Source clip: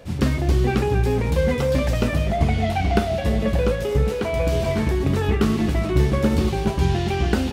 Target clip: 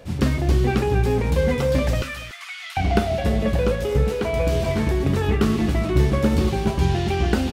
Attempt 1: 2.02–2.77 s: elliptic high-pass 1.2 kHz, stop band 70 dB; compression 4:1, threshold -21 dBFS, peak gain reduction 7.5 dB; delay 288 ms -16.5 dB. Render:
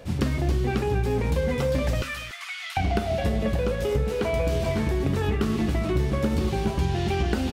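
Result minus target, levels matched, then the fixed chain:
compression: peak gain reduction +7.5 dB
2.02–2.77 s: elliptic high-pass 1.2 kHz, stop band 70 dB; delay 288 ms -16.5 dB

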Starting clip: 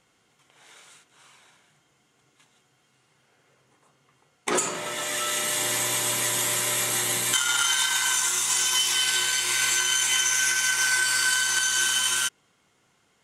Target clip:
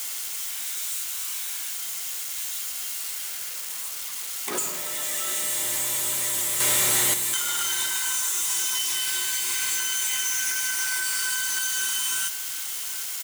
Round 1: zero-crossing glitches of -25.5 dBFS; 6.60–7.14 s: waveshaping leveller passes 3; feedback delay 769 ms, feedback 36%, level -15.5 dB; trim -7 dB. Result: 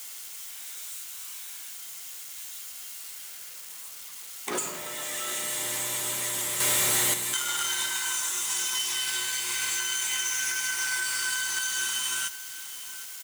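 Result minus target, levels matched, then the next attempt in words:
zero-crossing glitches: distortion -8 dB
zero-crossing glitches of -16.5 dBFS; 6.60–7.14 s: waveshaping leveller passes 3; feedback delay 769 ms, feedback 36%, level -15.5 dB; trim -7 dB

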